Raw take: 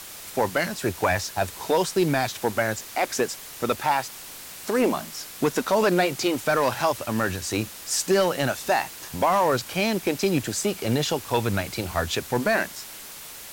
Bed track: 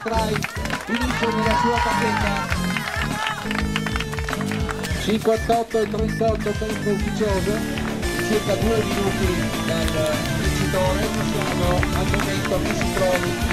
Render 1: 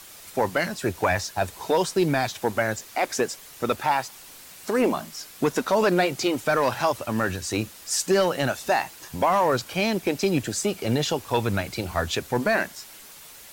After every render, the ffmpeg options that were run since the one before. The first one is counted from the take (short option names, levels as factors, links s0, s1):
-af "afftdn=nr=6:nf=-41"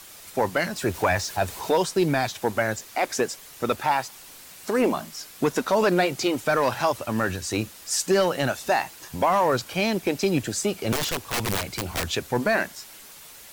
-filter_complex "[0:a]asettb=1/sr,asplit=3[s0][s1][s2];[s0]atrim=end=0.764[s3];[s1]atrim=start=0.76:end=1.77,asetpts=PTS-STARTPTS,afade=t=in:d=0.004:c=qsin,afade=t=out:st=1.006:d=0.004:c=qsin,aeval=exprs='val(0)+0.5*0.0133*sgn(val(0))':c=same[s4];[s2]atrim=start=1.766[s5];[s3][s4]acrossfade=d=0.004:c1=hsin:c2=qsin[s6];[s6][s5]acrossfade=d=0.004:c1=qsin:c2=hsin,asettb=1/sr,asplit=3[s7][s8][s9];[s7]atrim=end=10.924[s10];[s8]atrim=start=10.92:end=12.09,asetpts=PTS-STARTPTS,afade=t=in:d=0.004:c=qsin,afade=t=out:st=1.166:d=0.004:c=qsin,aeval=exprs='(mod(9.44*val(0)+1,2)-1)/9.44':c=same[s11];[s9]atrim=start=12.086[s12];[s10][s11]acrossfade=d=0.004:c1=hsin:c2=qsin[s13];[s13][s12]acrossfade=d=0.004:c1=qsin:c2=hsin"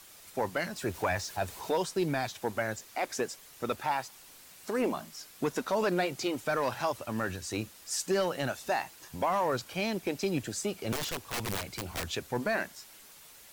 -af "volume=0.398"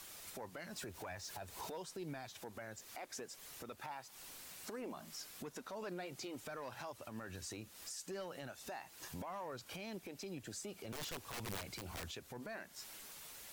-af "acompressor=threshold=0.0112:ratio=3,alimiter=level_in=4.47:limit=0.0631:level=0:latency=1:release=227,volume=0.224"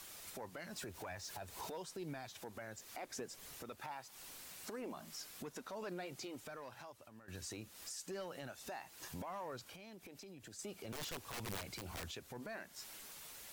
-filter_complex "[0:a]asettb=1/sr,asplit=3[s0][s1][s2];[s0]atrim=end=2.964[s3];[s1]atrim=start=2.96:end=3.56,asetpts=PTS-STARTPTS,afade=t=in:d=0.004:c=qsin,afade=t=out:st=0.596:d=0.004:c=qsin,lowshelf=f=370:g=6.5[s4];[s2]atrim=start=3.556[s5];[s3][s4]acrossfade=d=0.004:c1=hsin:c2=qsin[s6];[s6][s5]acrossfade=d=0.004:c1=qsin:c2=hsin,asettb=1/sr,asplit=3[s7][s8][s9];[s7]atrim=end=9.664[s10];[s8]atrim=start=9.66:end=10.59,asetpts=PTS-STARTPTS,afade=t=in:d=0.004:c=qsin,afade=t=out:st=0.926:d=0.004:c=qsin,acompressor=threshold=0.00282:ratio=5:attack=3.2:release=140:knee=1:detection=peak[s11];[s9]atrim=start=10.586[s12];[s10][s11]acrossfade=d=0.004:c1=hsin:c2=qsin[s13];[s13][s12]acrossfade=d=0.004:c1=qsin:c2=hsin,asplit=2[s14][s15];[s14]atrim=end=7.28,asetpts=PTS-STARTPTS,afade=t=out:st=6.11:d=1.17:silence=0.199526[s16];[s15]atrim=start=7.28,asetpts=PTS-STARTPTS,afade=t=in:d=0.004:c=hsin:silence=0.199526[s17];[s16][s17]concat=n=2:v=0:a=1"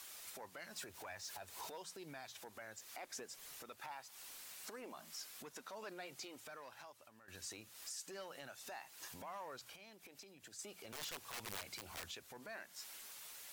-af "lowshelf=f=470:g=-11,bandreject=f=60:t=h:w=6,bandreject=f=120:t=h:w=6,bandreject=f=180:t=h:w=6"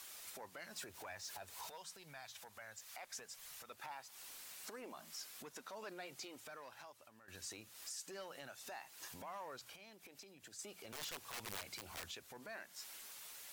-filter_complex "[0:a]asettb=1/sr,asplit=3[s0][s1][s2];[s0]atrim=end=1.544[s3];[s1]atrim=start=1.54:end=3.7,asetpts=PTS-STARTPTS,afade=t=in:d=0.004:c=qsin,afade=t=out:st=2.156:d=0.004:c=qsin,equalizer=f=320:w=1.3:g=-13.5[s4];[s2]atrim=start=3.696[s5];[s3][s4]acrossfade=d=0.004:c1=hsin:c2=qsin[s6];[s6][s5]acrossfade=d=0.004:c1=qsin:c2=hsin"